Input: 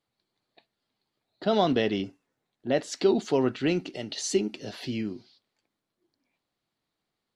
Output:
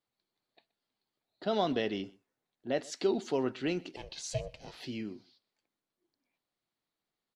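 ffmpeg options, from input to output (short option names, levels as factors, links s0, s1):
-filter_complex "[0:a]equalizer=f=92:w=0.52:g=-4,asettb=1/sr,asplit=3[s0][s1][s2];[s0]atrim=end=3.964[s3];[s1]atrim=start=3.96:end=4.8,asetpts=PTS-STARTPTS,afade=t=in:d=0.004:c=qsin,afade=t=out:st=0.836:d=0.004:c=qsin,aeval=exprs='val(0)*sin(2*PI*260*n/s)':c=same[s4];[s2]atrim=start=4.796[s5];[s3][s4]acrossfade=d=0.004:c1=hsin:c2=qsin[s6];[s6][s5]acrossfade=d=0.004:c1=qsin:c2=hsin,aecho=1:1:124:0.0668,volume=0.501"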